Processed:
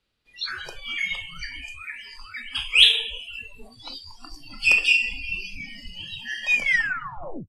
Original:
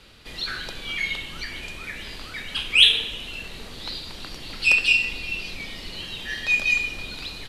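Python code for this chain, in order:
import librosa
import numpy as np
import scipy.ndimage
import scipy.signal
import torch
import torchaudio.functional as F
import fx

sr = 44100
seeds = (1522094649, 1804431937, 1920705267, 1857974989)

y = fx.tape_stop_end(x, sr, length_s=0.92)
y = fx.noise_reduce_blind(y, sr, reduce_db=26)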